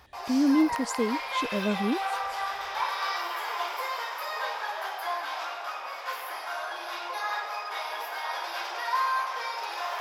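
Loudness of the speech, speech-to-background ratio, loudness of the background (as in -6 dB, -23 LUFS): -27.5 LUFS, 4.5 dB, -32.0 LUFS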